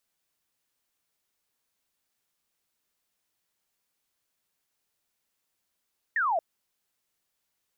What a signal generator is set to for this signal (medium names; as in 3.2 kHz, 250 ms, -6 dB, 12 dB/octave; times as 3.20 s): laser zap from 1.9 kHz, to 620 Hz, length 0.23 s sine, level -23 dB